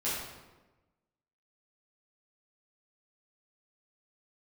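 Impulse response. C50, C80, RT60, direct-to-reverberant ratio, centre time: 0.0 dB, 3.0 dB, 1.2 s, −10.5 dB, 77 ms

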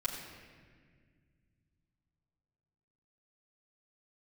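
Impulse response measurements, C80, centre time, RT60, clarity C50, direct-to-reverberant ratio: 5.0 dB, 54 ms, 1.8 s, 4.5 dB, −5.5 dB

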